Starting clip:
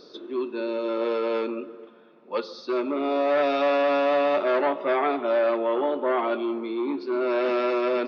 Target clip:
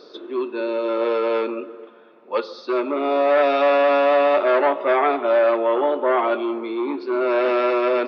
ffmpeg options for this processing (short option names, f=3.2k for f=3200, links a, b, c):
-af "bass=f=250:g=-12,treble=f=4k:g=-8,volume=6dB"